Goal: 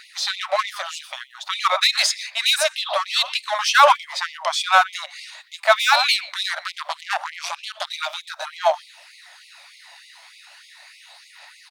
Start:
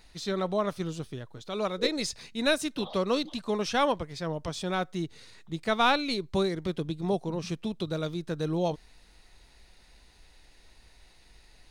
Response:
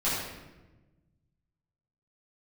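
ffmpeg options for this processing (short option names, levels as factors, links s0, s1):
-filter_complex "[0:a]bass=f=250:g=8,treble=f=4000:g=-5,asplit=2[s0][s1];[s1]adelay=120,highpass=300,lowpass=3400,asoftclip=type=hard:threshold=0.15,volume=0.2[s2];[s0][s2]amix=inputs=2:normalize=0,asplit=2[s3][s4];[s4]acrusher=bits=3:mix=0:aa=0.5,volume=0.398[s5];[s3][s5]amix=inputs=2:normalize=0,asoftclip=type=tanh:threshold=0.2,asettb=1/sr,asplit=3[s6][s7][s8];[s6]atrim=end=6.644[s9];[s7]atrim=start=6.64:end=7.89,asetpts=PTS-STARTPTS,afade=t=in:d=0.004:c=qsin,afade=t=out:st=1.246:d=0.004:c=qsin,aeval=exprs='0.2*(cos(1*acos(clip(val(0)/0.2,-1,1)))-cos(1*PI/2))+0.0794*(cos(2*acos(clip(val(0)/0.2,-1,1)))-cos(2*PI/2))+0.0355*(cos(6*acos(clip(val(0)/0.2,-1,1)))-cos(6*PI/2))+0.0141*(cos(7*acos(clip(val(0)/0.2,-1,1)))-cos(7*PI/2))':c=same[s10];[s8]atrim=start=7.886[s11];[s9][s10]acrossfade=d=0.004:c1=hsin:c2=qsin[s12];[s12][s11]acrossfade=d=0.004:c1=qsin:c2=hsin,asplit=2[s13][s14];[1:a]atrim=start_sample=2205,asetrate=88200,aresample=44100,adelay=44[s15];[s14][s15]afir=irnorm=-1:irlink=0,volume=0.0282[s16];[s13][s16]amix=inputs=2:normalize=0,aphaser=in_gain=1:out_gain=1:delay=1.1:decay=0.31:speed=0.35:type=triangular,alimiter=level_in=7.08:limit=0.891:release=50:level=0:latency=1,afftfilt=real='re*gte(b*sr/1024,540*pow(2000/540,0.5+0.5*sin(2*PI*3.3*pts/sr)))':imag='im*gte(b*sr/1024,540*pow(2000/540,0.5+0.5*sin(2*PI*3.3*pts/sr)))':win_size=1024:overlap=0.75"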